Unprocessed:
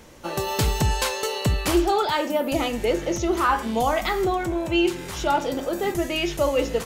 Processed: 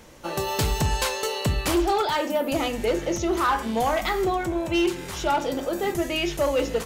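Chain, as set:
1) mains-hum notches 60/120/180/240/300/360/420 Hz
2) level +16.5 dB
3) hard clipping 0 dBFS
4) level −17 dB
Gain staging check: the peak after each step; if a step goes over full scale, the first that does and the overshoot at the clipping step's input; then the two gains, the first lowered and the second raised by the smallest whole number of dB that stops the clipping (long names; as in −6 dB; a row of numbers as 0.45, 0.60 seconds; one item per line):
−10.0, +6.5, 0.0, −17.0 dBFS
step 2, 6.5 dB
step 2 +9.5 dB, step 4 −10 dB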